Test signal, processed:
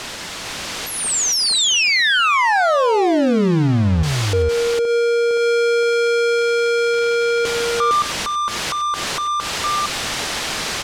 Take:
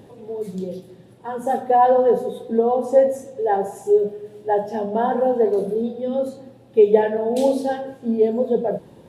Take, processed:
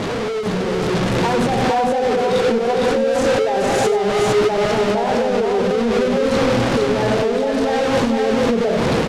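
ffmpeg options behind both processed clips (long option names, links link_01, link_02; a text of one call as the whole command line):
ffmpeg -i in.wav -filter_complex "[0:a]aeval=exprs='val(0)+0.5*0.141*sgn(val(0))':channel_layout=same,lowpass=5400,acompressor=threshold=-18dB:ratio=6,alimiter=limit=-20dB:level=0:latency=1:release=54,dynaudnorm=framelen=600:gausssize=3:maxgain=5dB,asplit=2[link_01][link_02];[link_02]aecho=0:1:95|458:0.2|0.708[link_03];[link_01][link_03]amix=inputs=2:normalize=0" out.wav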